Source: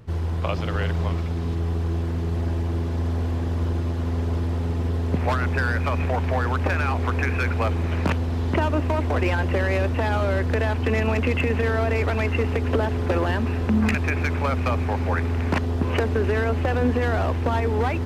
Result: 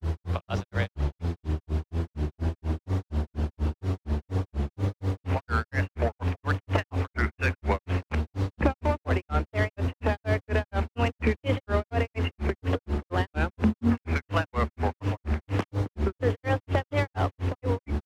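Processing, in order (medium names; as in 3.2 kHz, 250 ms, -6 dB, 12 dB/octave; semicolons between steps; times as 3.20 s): granulator 175 ms, grains 4.2 per s, pitch spread up and down by 3 st; vibrato 0.61 Hz 12 cents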